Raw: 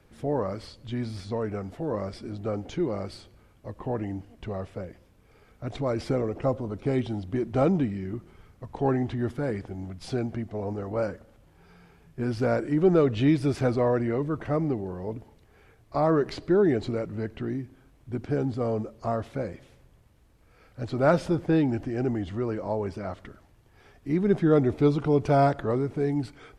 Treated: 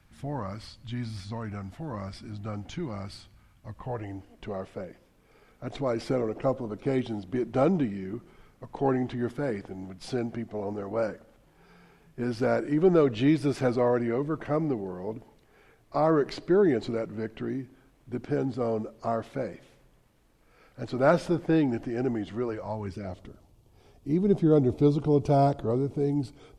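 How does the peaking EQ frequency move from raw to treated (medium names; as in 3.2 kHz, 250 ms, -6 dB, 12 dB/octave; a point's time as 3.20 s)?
peaking EQ -14 dB 1 oct
3.74 s 440 Hz
4.48 s 75 Hz
22.41 s 75 Hz
22.61 s 280 Hz
23.22 s 1.7 kHz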